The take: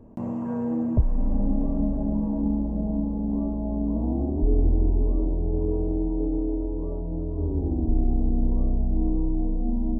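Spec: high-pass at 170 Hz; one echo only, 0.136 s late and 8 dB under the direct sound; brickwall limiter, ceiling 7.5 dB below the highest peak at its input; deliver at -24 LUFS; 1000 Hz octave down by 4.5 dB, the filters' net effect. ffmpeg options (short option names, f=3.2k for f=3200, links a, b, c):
-af "highpass=170,equalizer=f=1k:t=o:g=-6.5,alimiter=level_in=0.5dB:limit=-24dB:level=0:latency=1,volume=-0.5dB,aecho=1:1:136:0.398,volume=8dB"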